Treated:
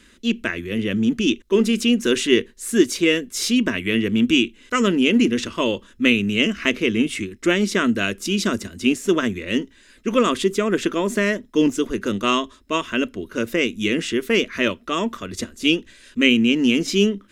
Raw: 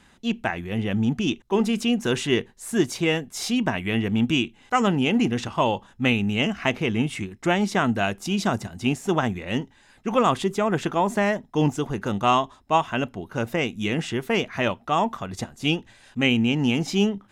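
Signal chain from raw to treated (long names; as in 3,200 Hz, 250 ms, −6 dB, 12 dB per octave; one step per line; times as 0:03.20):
phaser with its sweep stopped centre 330 Hz, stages 4
level +6.5 dB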